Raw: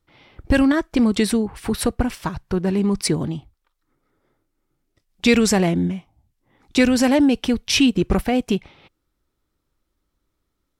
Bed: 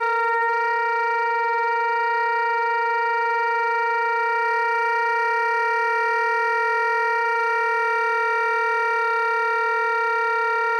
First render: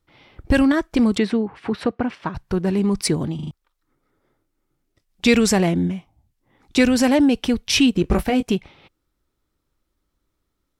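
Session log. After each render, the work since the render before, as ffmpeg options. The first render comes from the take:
-filter_complex "[0:a]asettb=1/sr,asplit=3[a][b][c];[a]atrim=end=1.184[d];[b]atrim=start=1.18:end=2.35,asetpts=PTS-STARTPTS,afade=t=in:d=0.004:c=qsin,afade=t=out:st=1.166:d=0.004:c=qsin,highpass=160,lowpass=2.8k[e];[c]atrim=start=2.346[f];[d][e]acrossfade=d=0.004:c1=hsin:c2=qsin[g];[g][f]acrossfade=d=0.004:c1=qsin:c2=hsin,asettb=1/sr,asplit=3[h][i][j];[h]atrim=end=8.024[k];[i]atrim=start=8.02:end=8.43,asetpts=PTS-STARTPTS,afade=t=in:d=0.004:c=qsin,afade=t=out:st=0.406:d=0.004:c=qsin,asplit=2[l][m];[m]adelay=19,volume=-7.5dB[n];[l][n]amix=inputs=2:normalize=0,atrim=end_sample=18081[o];[j]atrim=start=8.426[p];[k][o]acrossfade=d=0.004:c1=hsin:c2=qsin[q];[q][p]acrossfade=d=0.004:c1=qsin:c2=hsin,asplit=5[r][s][t][u][v];[r]atrim=end=3.392[w];[s]atrim=start=3.348:end=3.392[x];[t]atrim=start=3.348:end=3.392[y];[u]atrim=start=3.348:end=3.392[z];[v]atrim=start=3.508[aa];[w][x]acrossfade=d=0.004:c1=hsin:c2=hsin[ab];[ab][y]acrossfade=d=0.004:c1=hsin:c2=hsin[ac];[ac][z]acrossfade=d=0.004:c1=hsin:c2=hsin[ad];[ad][aa]acrossfade=d=0.004:c1=hsin:c2=hsin"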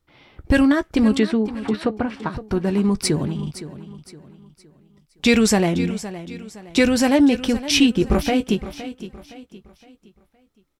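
-filter_complex "[0:a]asplit=2[a][b];[b]adelay=14,volume=-12dB[c];[a][c]amix=inputs=2:normalize=0,aecho=1:1:515|1030|1545|2060:0.2|0.0758|0.0288|0.0109"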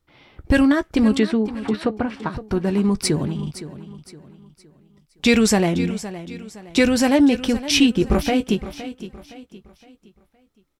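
-af anull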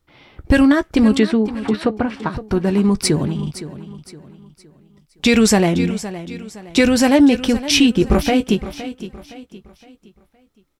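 -af "volume=3.5dB,alimiter=limit=-3dB:level=0:latency=1"

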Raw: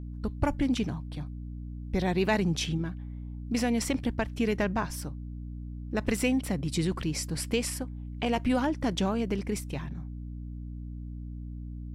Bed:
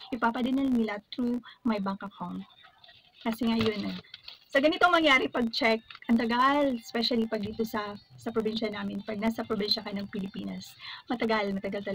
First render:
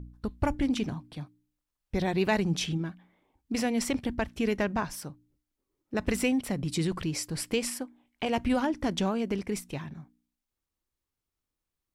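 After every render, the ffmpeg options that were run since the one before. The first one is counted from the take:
-af "bandreject=f=60:t=h:w=4,bandreject=f=120:t=h:w=4,bandreject=f=180:t=h:w=4,bandreject=f=240:t=h:w=4,bandreject=f=300:t=h:w=4"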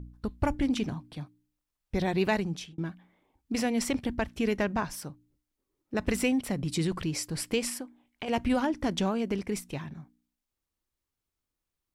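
-filter_complex "[0:a]asettb=1/sr,asplit=3[a][b][c];[a]atrim=end=7.804[d];[b]atrim=start=7.8:end=8.28,asetpts=PTS-STARTPTS,afade=t=in:d=0.004:c=qsin,afade=t=out:st=0.476:d=0.004:c=qsin,acompressor=threshold=-32dB:ratio=5:attack=3.2:release=140:knee=1:detection=peak[e];[c]atrim=start=8.276[f];[d][e]acrossfade=d=0.004:c1=hsin:c2=qsin[g];[g][f]acrossfade=d=0.004:c1=qsin:c2=hsin,asplit=2[h][i];[h]atrim=end=2.78,asetpts=PTS-STARTPTS,afade=t=out:st=2.27:d=0.51[j];[i]atrim=start=2.78,asetpts=PTS-STARTPTS,afade=t=in:d=0.004:c=hsin[k];[j][k]concat=n=2:v=0:a=1"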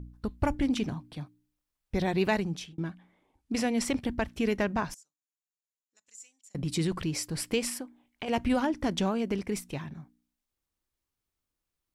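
-filter_complex "[0:a]asettb=1/sr,asplit=3[a][b][c];[a]atrim=end=2.804[d];[b]atrim=start=2.8:end=3.88,asetpts=PTS-STARTPTS,afade=t=in:d=0.004:c=qsin,afade=t=out:st=1.076:d=0.004:c=qsin,lowpass=f=12k:w=0.5412,lowpass=f=12k:w=1.3066[e];[c]atrim=start=3.876[f];[d][e]acrossfade=d=0.004:c1=hsin:c2=qsin[g];[g][f]acrossfade=d=0.004:c1=qsin:c2=hsin,asettb=1/sr,asplit=3[h][i][j];[h]atrim=end=4.944[k];[i]atrim=start=4.94:end=6.55,asetpts=PTS-STARTPTS,afade=t=in:d=0.004:c=qsin,afade=t=out:st=1.606:d=0.004:c=qsin,bandpass=f=7k:t=q:w=13[l];[j]atrim=start=6.546[m];[k][l]acrossfade=d=0.004:c1=hsin:c2=qsin[n];[n][m]acrossfade=d=0.004:c1=qsin:c2=hsin"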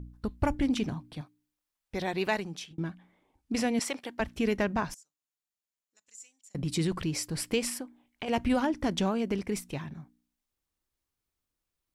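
-filter_complex "[0:a]asettb=1/sr,asplit=3[a][b][c];[a]atrim=end=1.214[d];[b]atrim=start=1.21:end=2.71,asetpts=PTS-STARTPTS,afade=t=in:d=0.004:c=qsin,afade=t=out:st=1.496:d=0.004:c=qsin,lowshelf=f=250:g=-11.5[e];[c]atrim=start=2.706[f];[d][e]acrossfade=d=0.004:c1=hsin:c2=qsin[g];[g][f]acrossfade=d=0.004:c1=qsin:c2=hsin,asettb=1/sr,asplit=3[h][i][j];[h]atrim=end=3.794[k];[i]atrim=start=3.79:end=4.2,asetpts=PTS-STARTPTS,afade=t=in:d=0.004:c=qsin,afade=t=out:st=0.406:d=0.004:c=qsin,highpass=500[l];[j]atrim=start=4.196[m];[k][l]acrossfade=d=0.004:c1=hsin:c2=qsin[n];[n][m]acrossfade=d=0.004:c1=qsin:c2=hsin"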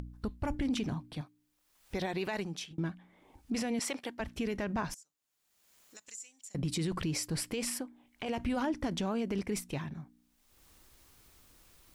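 -af "acompressor=mode=upward:threshold=-40dB:ratio=2.5,alimiter=level_in=1dB:limit=-24dB:level=0:latency=1:release=32,volume=-1dB"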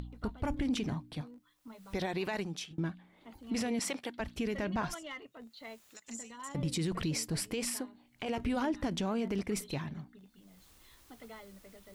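-filter_complex "[1:a]volume=-22.5dB[a];[0:a][a]amix=inputs=2:normalize=0"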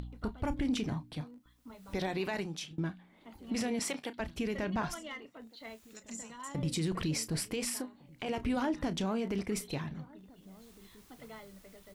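-filter_complex "[0:a]asplit=2[a][b];[b]adelay=32,volume=-14dB[c];[a][c]amix=inputs=2:normalize=0,asplit=2[d][e];[e]adelay=1458,volume=-23dB,highshelf=f=4k:g=-32.8[f];[d][f]amix=inputs=2:normalize=0"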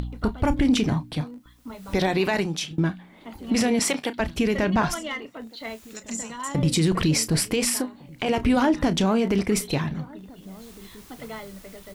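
-af "volume=12dB"

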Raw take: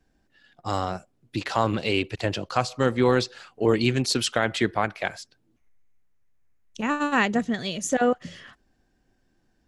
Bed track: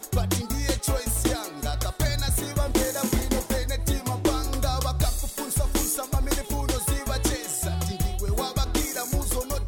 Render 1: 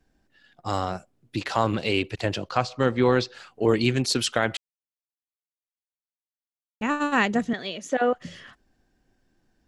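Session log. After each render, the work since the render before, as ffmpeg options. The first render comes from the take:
-filter_complex "[0:a]asettb=1/sr,asplit=3[a][b][c];[a]atrim=end=2.494[d];[b]atrim=start=2.49:end=3.34,asetpts=PTS-STARTPTS,afade=t=in:d=0.004:c=qsin,afade=t=out:st=0.846:d=0.004:c=qsin,lowpass=5.3k[e];[c]atrim=start=3.336[f];[d][e]acrossfade=d=0.004:c1=hsin:c2=qsin[g];[g][f]acrossfade=d=0.004:c1=qsin:c2=hsin,asettb=1/sr,asplit=3[h][i][j];[h]atrim=end=7.534[k];[i]atrim=start=7.53:end=8.14,asetpts=PTS-STARTPTS,afade=t=in:d=0.004:c=qsin,afade=t=out:st=0.606:d=0.004:c=qsin,acrossover=split=250 4500:gain=0.178 1 0.178[l][m][n];[l][m][n]amix=inputs=3:normalize=0[o];[j]atrim=start=8.136[p];[k][o]acrossfade=d=0.004:c1=hsin:c2=qsin[q];[q][p]acrossfade=d=0.004:c1=qsin:c2=hsin,asplit=3[r][s][t];[r]atrim=end=4.57,asetpts=PTS-STARTPTS,afade=t=out:st=4.566:d=0.004:c=hsin[u];[s]atrim=start=4.57:end=6.81,asetpts=PTS-STARTPTS,volume=0[v];[t]atrim=start=6.81,asetpts=PTS-STARTPTS,afade=t=in:d=0.004:c=hsin[w];[u][v][w]concat=n=3:v=0:a=1"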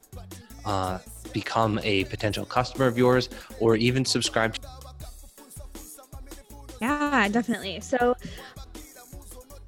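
-filter_complex "[1:a]volume=-17.5dB[a];[0:a][a]amix=inputs=2:normalize=0"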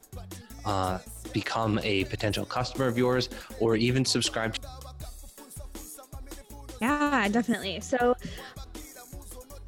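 -af "alimiter=limit=-15.5dB:level=0:latency=1:release=12,areverse,acompressor=mode=upward:threshold=-41dB:ratio=2.5,areverse"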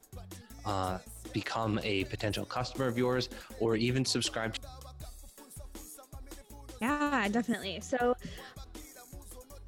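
-af "volume=-5dB"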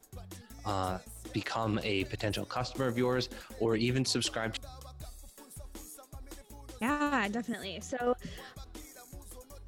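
-filter_complex "[0:a]asettb=1/sr,asplit=3[a][b][c];[a]atrim=end=7.254[d];[b]atrim=start=7.25:end=8.07,asetpts=PTS-STARTPTS,afade=t=in:d=0.004:c=qsin,afade=t=out:st=0.816:d=0.004:c=qsin,acompressor=threshold=-38dB:ratio=1.5:attack=3.2:release=140:knee=1:detection=peak[e];[c]atrim=start=8.066[f];[d][e]acrossfade=d=0.004:c1=hsin:c2=qsin[g];[g][f]acrossfade=d=0.004:c1=qsin:c2=hsin"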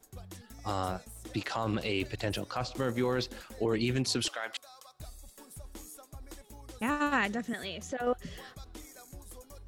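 -filter_complex "[0:a]asettb=1/sr,asplit=3[a][b][c];[a]atrim=end=4.284[d];[b]atrim=start=4.28:end=5,asetpts=PTS-STARTPTS,afade=t=in:d=0.004:c=qsin,afade=t=out:st=0.716:d=0.004:c=qsin,highpass=720[e];[c]atrim=start=4.996[f];[d][e]acrossfade=d=0.004:c1=hsin:c2=qsin[g];[g][f]acrossfade=d=0.004:c1=qsin:c2=hsin,asettb=1/sr,asplit=3[h][i][j];[h]atrim=end=7.004[k];[i]atrim=start=7:end=7.76,asetpts=PTS-STARTPTS,afade=t=in:d=0.004:c=qsin,afade=t=out:st=0.756:d=0.004:c=qsin,equalizer=f=1.8k:w=1:g=3.5[l];[j]atrim=start=7.756[m];[k][l]acrossfade=d=0.004:c1=hsin:c2=qsin[n];[n][m]acrossfade=d=0.004:c1=qsin:c2=hsin"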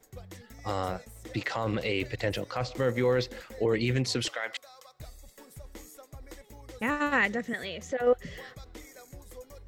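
-af "equalizer=f=125:t=o:w=0.33:g=5,equalizer=f=500:t=o:w=0.33:g=8,equalizer=f=2k:t=o:w=0.33:g=9,equalizer=f=10k:t=o:w=0.33:g=-8"

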